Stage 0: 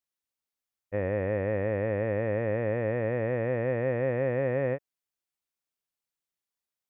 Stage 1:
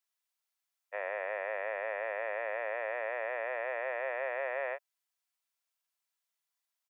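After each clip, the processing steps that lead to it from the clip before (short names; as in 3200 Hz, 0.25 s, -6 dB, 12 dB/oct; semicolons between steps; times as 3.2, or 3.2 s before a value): inverse Chebyshev high-pass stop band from 260 Hz, stop band 50 dB; comb 3 ms, depth 32%; gain +2.5 dB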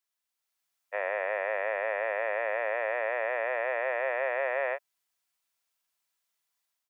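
AGC gain up to 5.5 dB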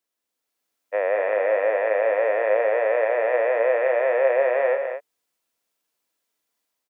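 small resonant body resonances 290/460 Hz, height 13 dB, ringing for 25 ms; on a send: loudspeakers at several distances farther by 59 m -11 dB, 75 m -8 dB; on the sum: gain +1.5 dB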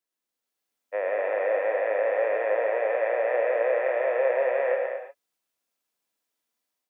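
reverb, pre-delay 3 ms, DRR 4 dB; gain -5.5 dB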